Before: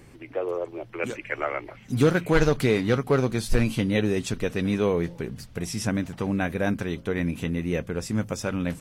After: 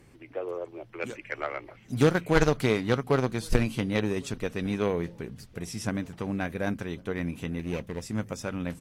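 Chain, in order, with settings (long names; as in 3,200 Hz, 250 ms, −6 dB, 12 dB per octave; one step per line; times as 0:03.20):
0:07.59–0:08.02: lower of the sound and its delayed copy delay 0.31 ms
slap from a distant wall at 190 metres, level −24 dB
harmonic generator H 3 −14 dB, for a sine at −7.5 dBFS
level +2 dB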